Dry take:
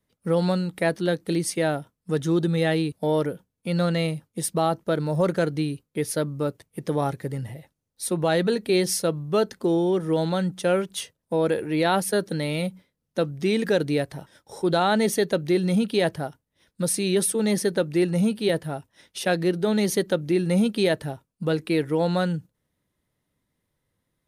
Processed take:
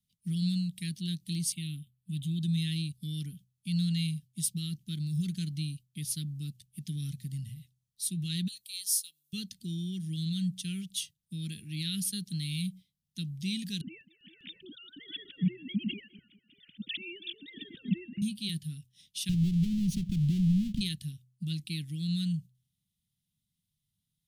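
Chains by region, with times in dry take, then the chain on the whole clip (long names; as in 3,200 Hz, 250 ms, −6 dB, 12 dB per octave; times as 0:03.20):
0:01.52–0:02.41: parametric band 310 Hz +6 dB 0.85 octaves + phaser with its sweep stopped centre 1,600 Hz, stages 6
0:08.48–0:09.33: high-pass filter 420 Hz + first difference
0:13.81–0:18.22: three sine waves on the formant tracks + repeating echo 199 ms, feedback 39%, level −19 dB + background raised ahead of every attack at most 51 dB per second
0:19.29–0:20.81: each half-wave held at its own peak + spectral tilt −4 dB per octave + downward compressor 10 to 1, threshold −16 dBFS
whole clip: elliptic band-stop filter 180–3,100 Hz, stop band 80 dB; low-shelf EQ 82 Hz −9.5 dB; hum removal 63.26 Hz, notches 2; level −2 dB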